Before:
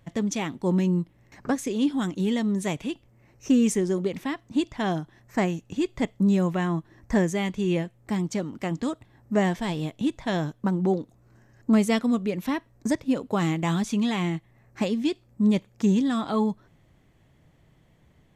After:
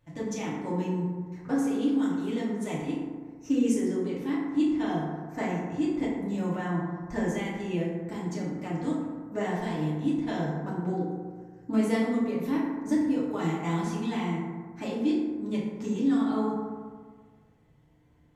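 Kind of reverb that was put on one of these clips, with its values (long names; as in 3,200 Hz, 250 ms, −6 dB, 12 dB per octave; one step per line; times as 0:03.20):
feedback delay network reverb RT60 1.6 s, low-frequency decay 1×, high-frequency decay 0.35×, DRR −8 dB
level −13 dB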